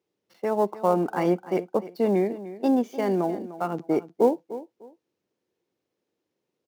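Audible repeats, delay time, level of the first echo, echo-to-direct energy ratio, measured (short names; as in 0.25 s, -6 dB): 2, 0.3 s, -15.0 dB, -15.0 dB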